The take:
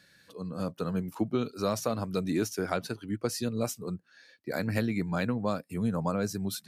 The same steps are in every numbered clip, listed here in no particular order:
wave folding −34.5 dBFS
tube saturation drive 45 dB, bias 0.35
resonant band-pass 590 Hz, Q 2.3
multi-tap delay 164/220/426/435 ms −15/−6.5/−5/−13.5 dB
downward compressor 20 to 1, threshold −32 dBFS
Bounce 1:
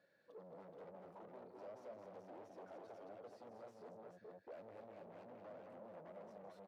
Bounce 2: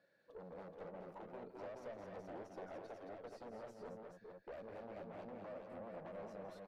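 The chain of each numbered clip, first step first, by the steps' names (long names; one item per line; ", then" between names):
downward compressor, then wave folding, then multi-tap delay, then tube saturation, then resonant band-pass
downward compressor, then wave folding, then resonant band-pass, then tube saturation, then multi-tap delay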